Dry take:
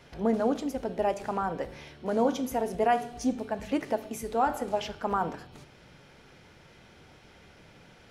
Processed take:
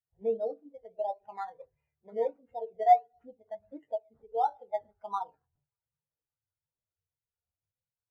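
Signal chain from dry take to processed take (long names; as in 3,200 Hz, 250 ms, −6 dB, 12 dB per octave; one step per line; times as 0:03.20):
in parallel at +1 dB: downward compressor 5 to 1, threshold −35 dBFS, peak gain reduction 14 dB
on the sum: octave-band graphic EQ 250/2,000/4,000 Hz −11/+3/−9 dB
delay with a high-pass on its return 195 ms, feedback 85%, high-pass 2,200 Hz, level −15.5 dB
on a send at −4 dB: convolution reverb RT60 0.25 s, pre-delay 3 ms
on the sum: sample-and-hold swept by an LFO 13×, swing 60% 1.5 Hz
every bin expanded away from the loudest bin 2.5 to 1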